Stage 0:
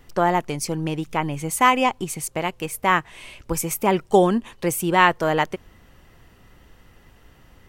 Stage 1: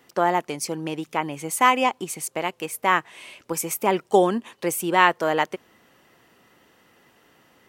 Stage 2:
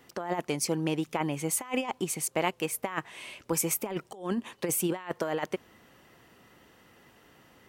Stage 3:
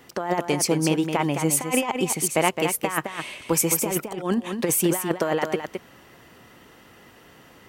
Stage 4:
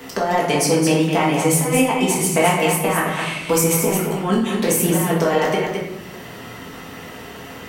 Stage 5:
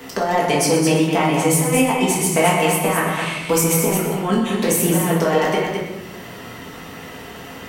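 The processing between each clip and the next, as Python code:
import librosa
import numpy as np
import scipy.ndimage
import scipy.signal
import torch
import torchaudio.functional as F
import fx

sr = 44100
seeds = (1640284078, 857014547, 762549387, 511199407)

y1 = scipy.signal.sosfilt(scipy.signal.butter(2, 240.0, 'highpass', fs=sr, output='sos'), x)
y1 = F.gain(torch.from_numpy(y1), -1.0).numpy()
y2 = fx.low_shelf(y1, sr, hz=120.0, db=9.0)
y2 = fx.over_compress(y2, sr, threshold_db=-24.0, ratio=-0.5)
y2 = F.gain(torch.from_numpy(y2), -5.0).numpy()
y3 = y2 + 10.0 ** (-7.0 / 20.0) * np.pad(y2, (int(214 * sr / 1000.0), 0))[:len(y2)]
y3 = F.gain(torch.from_numpy(y3), 7.0).numpy()
y4 = fx.room_shoebox(y3, sr, seeds[0], volume_m3=190.0, walls='mixed', distance_m=1.6)
y4 = fx.band_squash(y4, sr, depth_pct=40)
y5 = y4 + 10.0 ** (-10.5 / 20.0) * np.pad(y4, (int(124 * sr / 1000.0), 0))[:len(y4)]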